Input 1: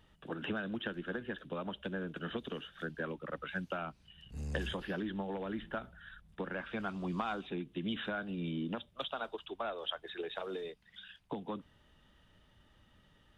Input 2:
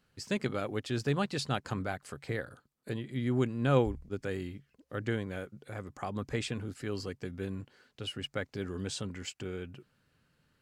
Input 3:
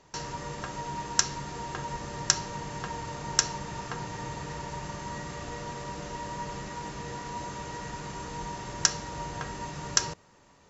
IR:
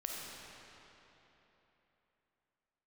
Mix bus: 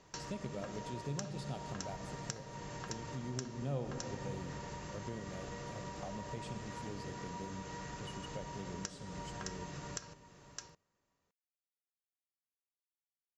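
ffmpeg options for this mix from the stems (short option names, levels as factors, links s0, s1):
-filter_complex "[1:a]equalizer=f=160:t=o:w=0.67:g=12,equalizer=f=630:t=o:w=0.67:g=8,equalizer=f=1600:t=o:w=0.67:g=-11,volume=0.316,asplit=2[s0][s1];[s1]volume=0.282[s2];[2:a]bandreject=f=890:w=12,volume=0.708,asplit=2[s3][s4];[s4]volume=0.1[s5];[s0][s3]amix=inputs=2:normalize=0,acompressor=threshold=0.00794:ratio=6,volume=1[s6];[3:a]atrim=start_sample=2205[s7];[s2][s7]afir=irnorm=-1:irlink=0[s8];[s5]aecho=0:1:613:1[s9];[s6][s8][s9]amix=inputs=3:normalize=0"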